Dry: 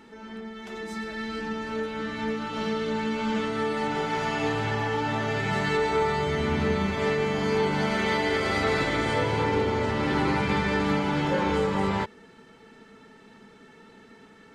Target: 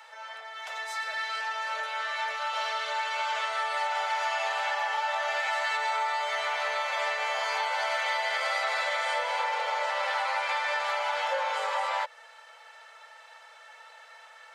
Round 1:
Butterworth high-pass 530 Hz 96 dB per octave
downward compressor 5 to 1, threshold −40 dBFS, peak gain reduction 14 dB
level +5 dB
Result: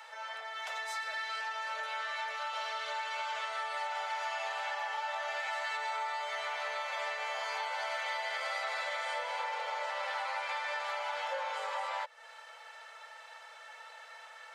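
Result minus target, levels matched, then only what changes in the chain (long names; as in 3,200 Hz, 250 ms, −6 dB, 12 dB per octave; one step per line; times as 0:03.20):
downward compressor: peak gain reduction +7 dB
change: downward compressor 5 to 1, threshold −31 dBFS, peak gain reduction 7 dB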